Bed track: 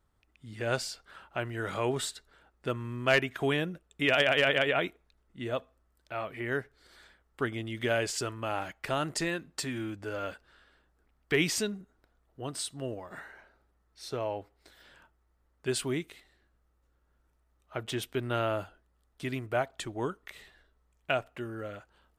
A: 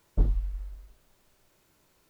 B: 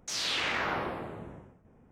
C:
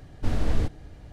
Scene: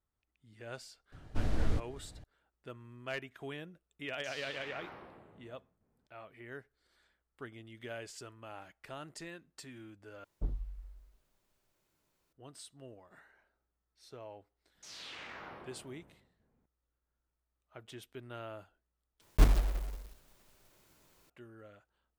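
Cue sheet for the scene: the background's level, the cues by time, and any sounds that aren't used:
bed track -15 dB
1.12 s: add C -7 dB
4.16 s: add B -17.5 dB
10.24 s: replace with A -12 dB
14.75 s: add B -16.5 dB
19.21 s: replace with A + block-companded coder 3-bit

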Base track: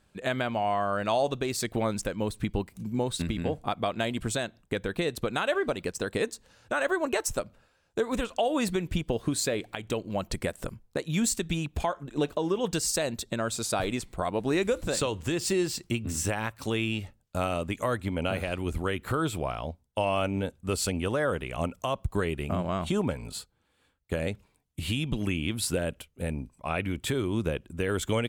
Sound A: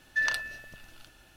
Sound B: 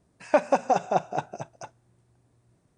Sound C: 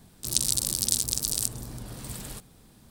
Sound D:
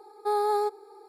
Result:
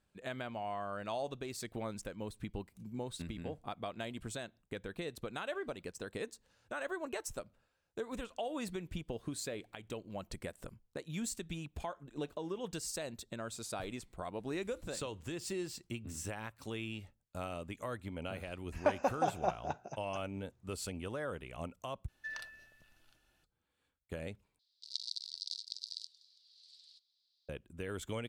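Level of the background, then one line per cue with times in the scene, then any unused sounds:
base track -12.5 dB
18.52 s: add B -9 dB + elliptic low-pass 6.9 kHz
22.08 s: replace with A -16 dB
24.59 s: replace with C -7.5 dB + Butterworth band-pass 4.3 kHz, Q 3.4
not used: D

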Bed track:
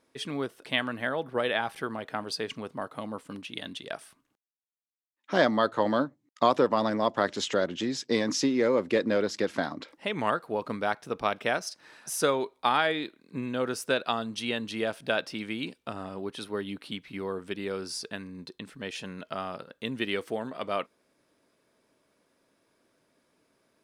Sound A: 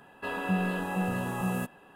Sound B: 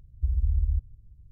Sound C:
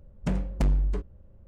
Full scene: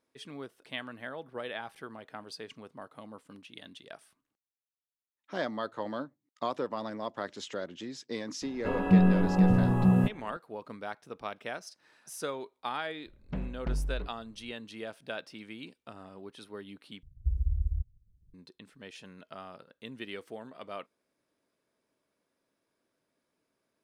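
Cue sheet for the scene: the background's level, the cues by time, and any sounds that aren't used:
bed track -10.5 dB
8.42 s: add A -1 dB + tilt EQ -4 dB/octave
13.06 s: add C -8.5 dB + low-pass 4 kHz 24 dB/octave
17.03 s: replace with B -2.5 dB + reverb removal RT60 1.1 s

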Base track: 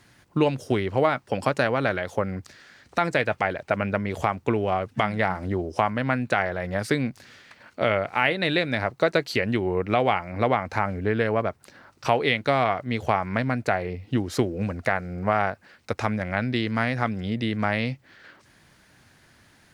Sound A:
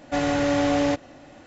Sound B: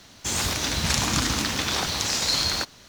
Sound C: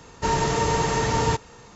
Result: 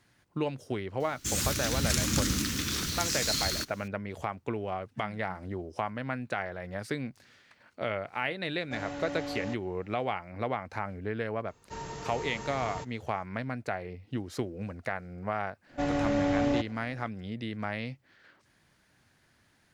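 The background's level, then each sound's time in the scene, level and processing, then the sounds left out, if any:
base track -10 dB
1.00 s: add B -2 dB + FFT filter 310 Hz 0 dB, 490 Hz -10 dB, 770 Hz -22 dB, 1.3 kHz -6 dB, 3.9 kHz -6 dB, 13 kHz +3 dB
8.59 s: add A -15.5 dB
11.48 s: add C -17.5 dB
15.66 s: add A -7.5 dB, fades 0.10 s + tilt EQ -1.5 dB/octave

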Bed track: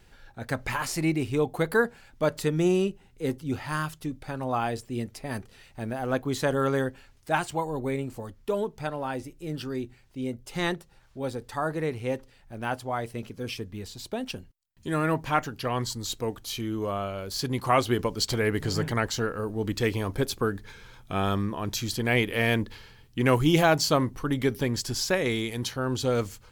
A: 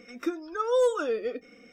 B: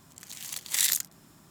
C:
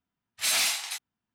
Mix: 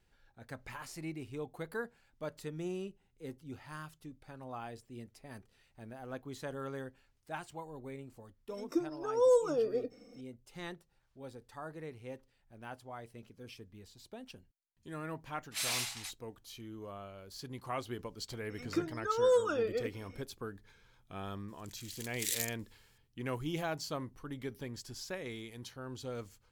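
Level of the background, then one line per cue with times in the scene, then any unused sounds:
bed track -16 dB
8.49 s: add A -2.5 dB + high-order bell 2.2 kHz -13 dB
15.13 s: add C -10 dB
18.50 s: add A -4 dB
21.48 s: add B -10.5 dB + inverse Chebyshev high-pass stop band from 510 Hz, stop band 60 dB

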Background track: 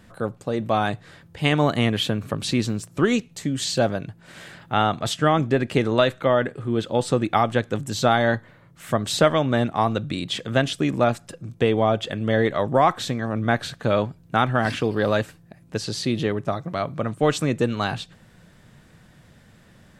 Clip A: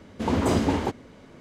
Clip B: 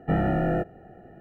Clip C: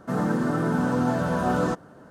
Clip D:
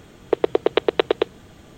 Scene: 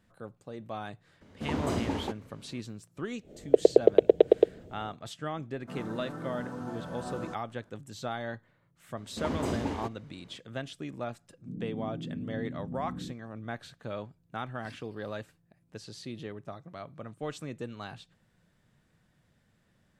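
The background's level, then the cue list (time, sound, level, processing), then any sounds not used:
background track -17 dB
1.21 s: add A -8.5 dB
3.21 s: add D -16.5 dB, fades 0.10 s + resonant low shelf 790 Hz +11.5 dB, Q 3
5.60 s: add C -15.5 dB
8.97 s: add A -9.5 dB
11.38 s: add C -12.5 dB + inverse Chebyshev low-pass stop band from 790 Hz, stop band 50 dB
not used: B

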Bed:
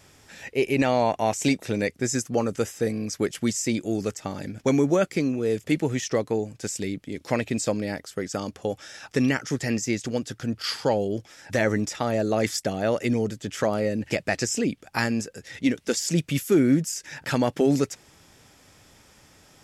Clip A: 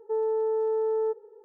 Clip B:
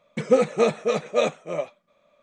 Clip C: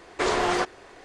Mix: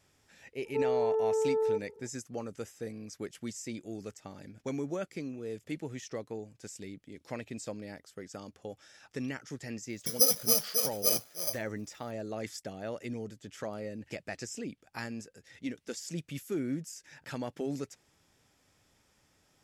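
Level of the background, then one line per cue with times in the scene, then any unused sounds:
bed -14.5 dB
0.65 s: add A -2.5 dB
9.89 s: add B -15.5 dB + careless resampling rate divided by 8×, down filtered, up zero stuff
not used: C

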